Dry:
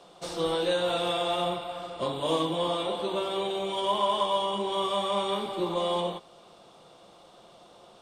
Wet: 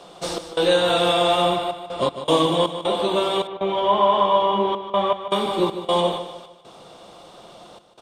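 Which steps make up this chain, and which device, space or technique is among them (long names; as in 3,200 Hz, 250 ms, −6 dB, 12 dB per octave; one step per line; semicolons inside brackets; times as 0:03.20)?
trance gate with a delay (gate pattern "xx.xxxxxx.x.xx.x" 79 BPM −24 dB; repeating echo 151 ms, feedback 39%, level −11 dB)
0:03.47–0:05.31: low-pass filter 2,300 Hz 12 dB per octave
level +9 dB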